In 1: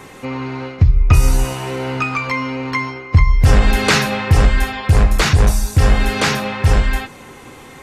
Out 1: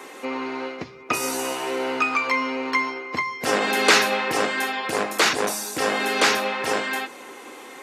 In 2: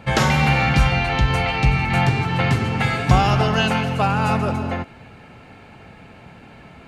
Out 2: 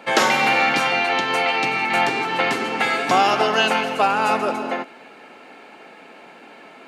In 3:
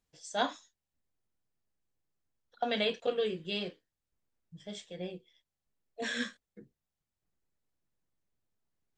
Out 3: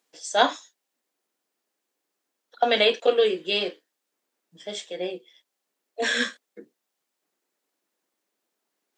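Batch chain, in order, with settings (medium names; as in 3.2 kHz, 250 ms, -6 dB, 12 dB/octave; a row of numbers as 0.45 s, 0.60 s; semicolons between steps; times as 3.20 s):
high-pass 280 Hz 24 dB/octave; peak normalisation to -3 dBFS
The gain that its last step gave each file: -1.0 dB, +2.5 dB, +11.5 dB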